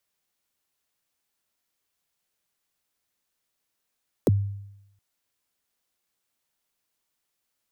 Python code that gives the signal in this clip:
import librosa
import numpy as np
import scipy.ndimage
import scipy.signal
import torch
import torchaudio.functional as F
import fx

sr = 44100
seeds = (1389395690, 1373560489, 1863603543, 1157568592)

y = fx.drum_kick(sr, seeds[0], length_s=0.72, level_db=-14, start_hz=590.0, end_hz=100.0, sweep_ms=26.0, decay_s=0.86, click=True)